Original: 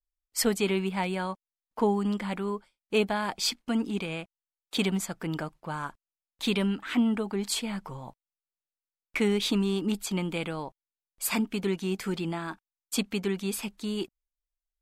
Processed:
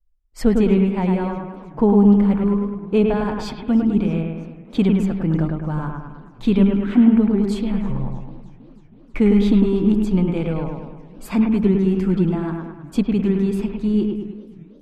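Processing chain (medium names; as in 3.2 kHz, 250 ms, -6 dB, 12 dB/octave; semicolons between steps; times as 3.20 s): tilt EQ -4.5 dB/octave; on a send: bucket-brigade echo 104 ms, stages 2048, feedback 53%, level -3.5 dB; on the sum: modulated delay 320 ms, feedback 69%, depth 197 cents, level -23.5 dB; trim +1.5 dB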